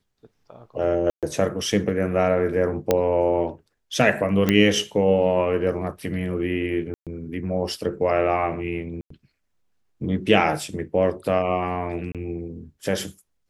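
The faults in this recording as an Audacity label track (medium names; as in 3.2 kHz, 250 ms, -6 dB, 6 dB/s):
1.100000	1.230000	dropout 127 ms
2.910000	2.910000	pop -5 dBFS
4.490000	4.490000	pop -6 dBFS
6.940000	7.070000	dropout 127 ms
9.010000	9.100000	dropout 94 ms
12.120000	12.150000	dropout 27 ms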